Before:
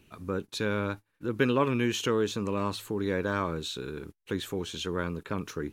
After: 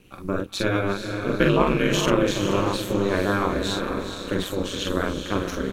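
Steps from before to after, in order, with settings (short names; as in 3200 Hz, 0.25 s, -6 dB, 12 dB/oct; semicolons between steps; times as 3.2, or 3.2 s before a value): doubler 44 ms -3 dB; diffused feedback echo 0.456 s, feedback 43%, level -6.5 dB; ring modulator 98 Hz; gain +7.5 dB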